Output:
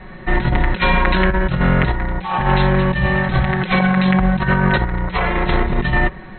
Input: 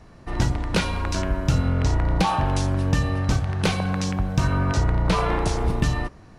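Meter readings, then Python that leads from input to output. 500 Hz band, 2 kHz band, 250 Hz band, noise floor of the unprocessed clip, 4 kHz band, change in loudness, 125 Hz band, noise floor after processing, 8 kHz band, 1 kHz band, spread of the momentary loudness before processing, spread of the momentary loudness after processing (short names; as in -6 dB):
+7.5 dB, +13.0 dB, +8.0 dB, -47 dBFS, +4.0 dB, +6.0 dB, +3.5 dB, -35 dBFS, under -40 dB, +7.5 dB, 4 LU, 5 LU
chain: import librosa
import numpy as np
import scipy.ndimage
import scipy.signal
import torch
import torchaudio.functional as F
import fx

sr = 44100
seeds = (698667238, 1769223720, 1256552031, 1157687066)

y = fx.peak_eq(x, sr, hz=1900.0, db=10.5, octaves=0.43)
y = fx.hum_notches(y, sr, base_hz=50, count=3)
y = y + 0.93 * np.pad(y, (int(5.4 * sr / 1000.0), 0))[:len(y)]
y = fx.over_compress(y, sr, threshold_db=-22.0, ratio=-0.5)
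y = fx.brickwall_lowpass(y, sr, high_hz=4200.0)
y = y * 10.0 ** (7.0 / 20.0)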